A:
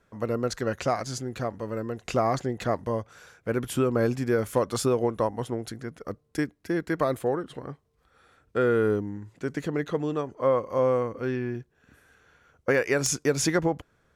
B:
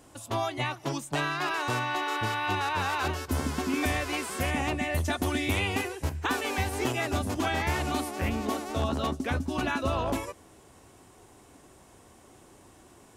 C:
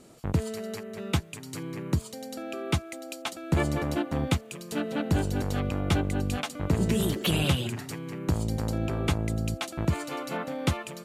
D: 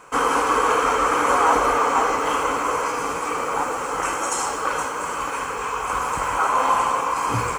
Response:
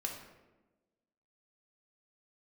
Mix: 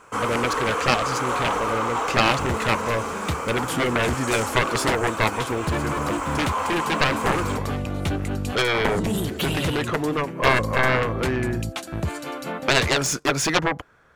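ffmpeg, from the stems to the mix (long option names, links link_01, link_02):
-filter_complex "[0:a]equalizer=frequency=1200:width=0.54:gain=9.5,volume=-3dB[link_01];[1:a]volume=-18.5dB[link_02];[2:a]adelay=2150,volume=-4dB[link_03];[3:a]volume=-11dB[link_04];[link_01][link_02][link_03][link_04]amix=inputs=4:normalize=0,aeval=exprs='0.473*(cos(1*acos(clip(val(0)/0.473,-1,1)))-cos(1*PI/2))+0.211*(cos(7*acos(clip(val(0)/0.473,-1,1)))-cos(7*PI/2))':channel_layout=same"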